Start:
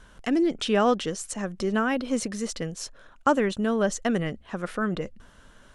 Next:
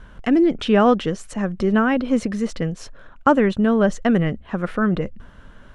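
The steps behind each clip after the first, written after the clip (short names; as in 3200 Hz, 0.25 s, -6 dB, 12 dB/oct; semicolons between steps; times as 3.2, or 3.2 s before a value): tone controls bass +5 dB, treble -13 dB; gain +5.5 dB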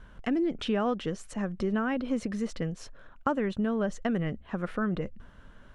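compressor 3:1, threshold -18 dBFS, peak gain reduction 6.5 dB; gain -7.5 dB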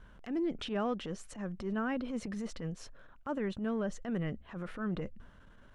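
transient shaper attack -11 dB, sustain +1 dB; gain -4.5 dB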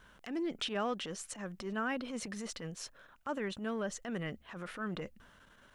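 tilt +2.5 dB/oct; gain +1 dB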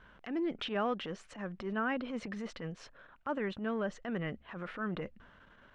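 LPF 2800 Hz 12 dB/oct; gain +2 dB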